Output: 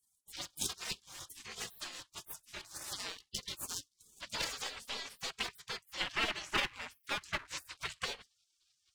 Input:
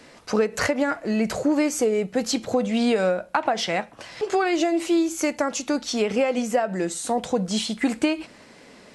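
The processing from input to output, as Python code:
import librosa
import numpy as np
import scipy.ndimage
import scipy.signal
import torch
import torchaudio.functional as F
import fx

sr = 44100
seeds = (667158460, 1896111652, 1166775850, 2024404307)

y = fx.filter_sweep_bandpass(x, sr, from_hz=2100.0, to_hz=760.0, start_s=3.48, end_s=5.86, q=1.1)
y = fx.power_curve(y, sr, exponent=1.4)
y = fx.spec_gate(y, sr, threshold_db=-30, keep='weak')
y = y * librosa.db_to_amplitude(17.0)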